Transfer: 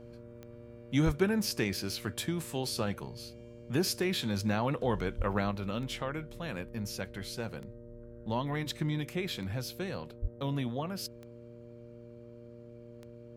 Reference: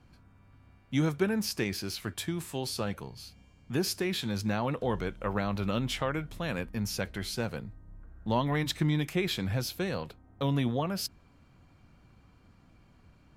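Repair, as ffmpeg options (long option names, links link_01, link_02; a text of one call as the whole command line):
ffmpeg -i in.wav -filter_complex "[0:a]adeclick=threshold=4,bandreject=frequency=118.3:width_type=h:width=4,bandreject=frequency=236.6:width_type=h:width=4,bandreject=frequency=354.9:width_type=h:width=4,bandreject=frequency=473.2:width_type=h:width=4,bandreject=frequency=591.5:width_type=h:width=4,asplit=3[link_01][link_02][link_03];[link_01]afade=type=out:start_time=1.05:duration=0.02[link_04];[link_02]highpass=frequency=140:width=0.5412,highpass=frequency=140:width=1.3066,afade=type=in:start_time=1.05:duration=0.02,afade=type=out:start_time=1.17:duration=0.02[link_05];[link_03]afade=type=in:start_time=1.17:duration=0.02[link_06];[link_04][link_05][link_06]amix=inputs=3:normalize=0,asplit=3[link_07][link_08][link_09];[link_07]afade=type=out:start_time=5.17:duration=0.02[link_10];[link_08]highpass=frequency=140:width=0.5412,highpass=frequency=140:width=1.3066,afade=type=in:start_time=5.17:duration=0.02,afade=type=out:start_time=5.29:duration=0.02[link_11];[link_09]afade=type=in:start_time=5.29:duration=0.02[link_12];[link_10][link_11][link_12]amix=inputs=3:normalize=0,asplit=3[link_13][link_14][link_15];[link_13]afade=type=out:start_time=10.21:duration=0.02[link_16];[link_14]highpass=frequency=140:width=0.5412,highpass=frequency=140:width=1.3066,afade=type=in:start_time=10.21:duration=0.02,afade=type=out:start_time=10.33:duration=0.02[link_17];[link_15]afade=type=in:start_time=10.33:duration=0.02[link_18];[link_16][link_17][link_18]amix=inputs=3:normalize=0,asetnsamples=nb_out_samples=441:pad=0,asendcmd='5.51 volume volume 5dB',volume=0dB" out.wav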